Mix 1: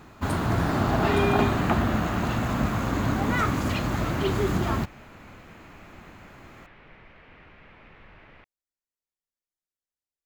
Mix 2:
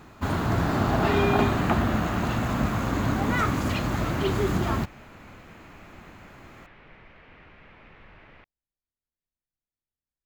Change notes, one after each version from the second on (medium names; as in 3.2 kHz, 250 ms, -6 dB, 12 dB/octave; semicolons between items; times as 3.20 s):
speech: add tone controls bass +12 dB, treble -13 dB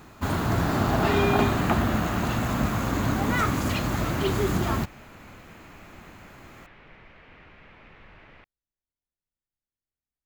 master: add treble shelf 6.3 kHz +7 dB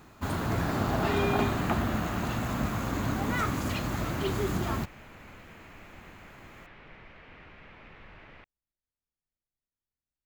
first sound -5.0 dB